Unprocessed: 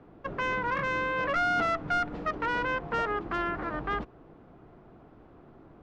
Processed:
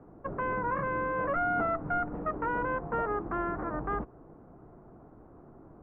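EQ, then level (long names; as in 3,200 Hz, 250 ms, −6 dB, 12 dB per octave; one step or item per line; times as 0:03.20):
Chebyshev low-pass filter 1,200 Hz, order 2
high-frequency loss of the air 450 metres
+2.0 dB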